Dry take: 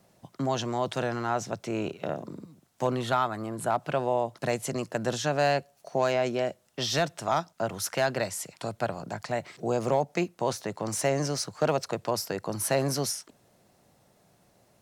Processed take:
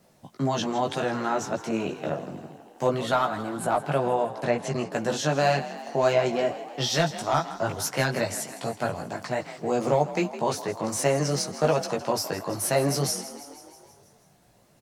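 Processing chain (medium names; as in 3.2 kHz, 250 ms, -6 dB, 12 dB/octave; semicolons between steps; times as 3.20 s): chorus voices 6, 0.54 Hz, delay 17 ms, depth 4.9 ms; 4.26–4.92 s: low-pass that closes with the level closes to 2.7 kHz, closed at -25.5 dBFS; frequency-shifting echo 161 ms, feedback 63%, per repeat +43 Hz, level -14.5 dB; trim +5.5 dB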